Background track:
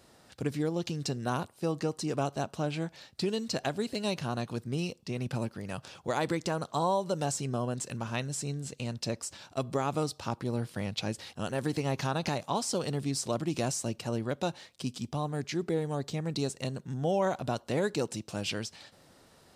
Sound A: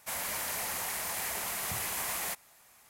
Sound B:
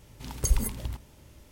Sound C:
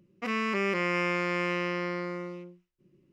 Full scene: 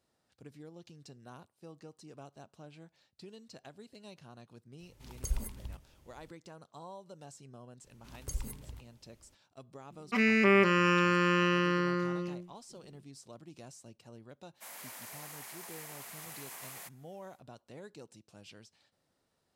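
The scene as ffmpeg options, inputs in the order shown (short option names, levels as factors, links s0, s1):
-filter_complex "[2:a]asplit=2[s0][s1];[0:a]volume=0.106[s2];[s0]asubboost=boost=2.5:cutoff=110[s3];[3:a]aecho=1:1:5:0.98[s4];[1:a]highpass=230[s5];[s3]atrim=end=1.51,asetpts=PTS-STARTPTS,volume=0.266,afade=t=in:d=0.004:c=hsin,afade=t=out:st=1.506:d=0.004:c=hsin,adelay=4800[s6];[s1]atrim=end=1.51,asetpts=PTS-STARTPTS,volume=0.224,afade=t=in:d=0.004:c=hsin,afade=t=out:st=1.506:d=0.004:c=hsin,adelay=7840[s7];[s4]atrim=end=3.12,asetpts=PTS-STARTPTS,afade=t=in:d=0.004:c=hsin,afade=t=out:st=3.116:d=0.004:c=hsin,adelay=9900[s8];[s5]atrim=end=2.89,asetpts=PTS-STARTPTS,volume=0.251,afade=t=in:d=0.1,afade=t=out:st=2.79:d=0.1,adelay=14540[s9];[s2][s6][s7][s8][s9]amix=inputs=5:normalize=0"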